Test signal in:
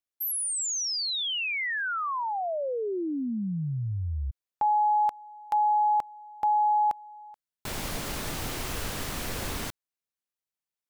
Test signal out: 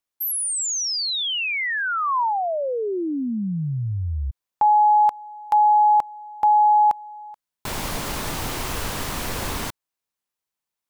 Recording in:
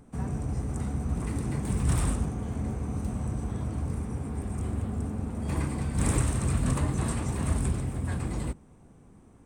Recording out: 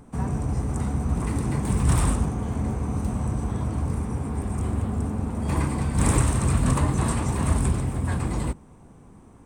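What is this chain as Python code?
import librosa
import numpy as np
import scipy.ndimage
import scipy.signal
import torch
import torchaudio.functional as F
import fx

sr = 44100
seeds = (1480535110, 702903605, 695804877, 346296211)

y = fx.peak_eq(x, sr, hz=980.0, db=4.5, octaves=0.57)
y = F.gain(torch.from_numpy(y), 5.0).numpy()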